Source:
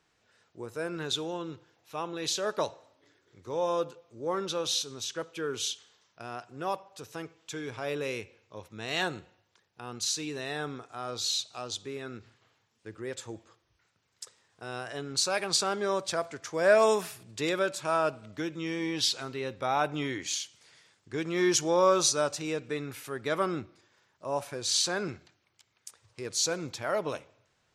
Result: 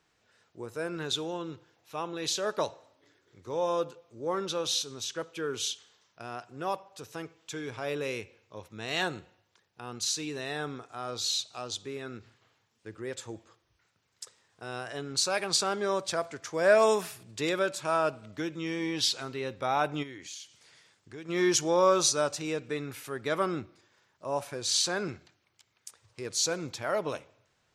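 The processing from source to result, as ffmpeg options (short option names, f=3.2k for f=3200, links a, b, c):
-filter_complex "[0:a]asplit=3[a][b][c];[a]afade=t=out:st=20.02:d=0.02[d];[b]acompressor=threshold=-48dB:ratio=2:attack=3.2:release=140:knee=1:detection=peak,afade=t=in:st=20.02:d=0.02,afade=t=out:st=21.28:d=0.02[e];[c]afade=t=in:st=21.28:d=0.02[f];[d][e][f]amix=inputs=3:normalize=0"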